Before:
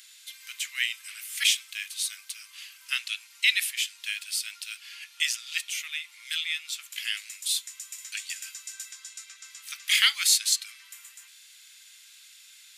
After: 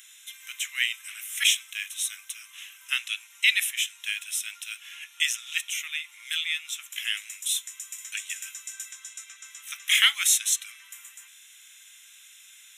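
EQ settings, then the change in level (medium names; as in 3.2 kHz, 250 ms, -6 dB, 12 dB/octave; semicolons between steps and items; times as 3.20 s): Butterworth band-stop 4.6 kHz, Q 2.7; +2.0 dB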